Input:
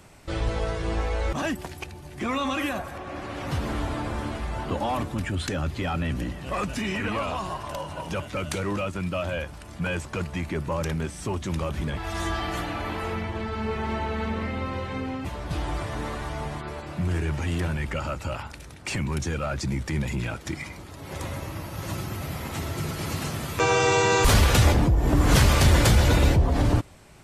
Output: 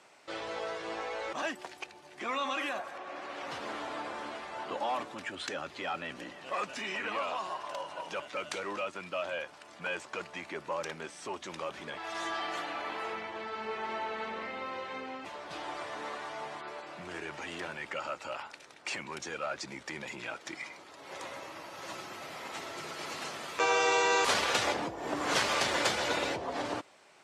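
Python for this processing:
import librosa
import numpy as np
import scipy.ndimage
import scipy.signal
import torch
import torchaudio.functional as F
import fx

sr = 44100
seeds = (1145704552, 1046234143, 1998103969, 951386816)

y = fx.bandpass_edges(x, sr, low_hz=480.0, high_hz=6700.0)
y = y * librosa.db_to_amplitude(-4.0)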